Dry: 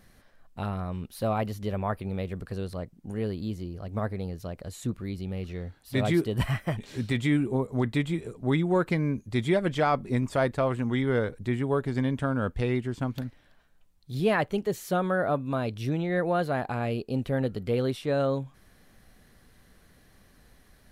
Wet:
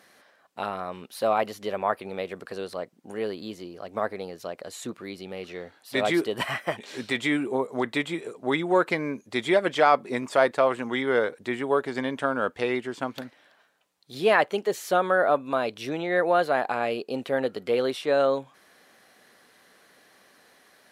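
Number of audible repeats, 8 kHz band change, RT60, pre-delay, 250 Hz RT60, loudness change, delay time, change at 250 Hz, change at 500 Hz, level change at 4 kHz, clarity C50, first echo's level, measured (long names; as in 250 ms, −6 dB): no echo audible, +4.0 dB, no reverb audible, no reverb audible, no reverb audible, +2.5 dB, no echo audible, −2.5 dB, +4.5 dB, +6.0 dB, no reverb audible, no echo audible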